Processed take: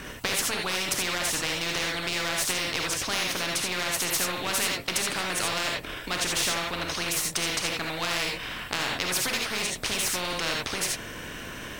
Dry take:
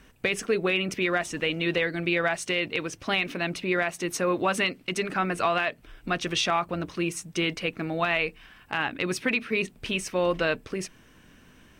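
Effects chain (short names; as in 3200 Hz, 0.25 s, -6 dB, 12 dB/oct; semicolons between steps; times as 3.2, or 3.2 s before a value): half-wave gain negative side -3 dB; non-linear reverb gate 0.1 s rising, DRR 0.5 dB; spectral compressor 4:1; gain +2 dB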